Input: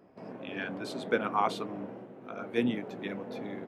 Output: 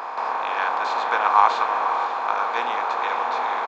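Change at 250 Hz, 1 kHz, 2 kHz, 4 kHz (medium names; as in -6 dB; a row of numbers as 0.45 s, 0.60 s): -11.0 dB, +17.5 dB, +12.5 dB, +9.0 dB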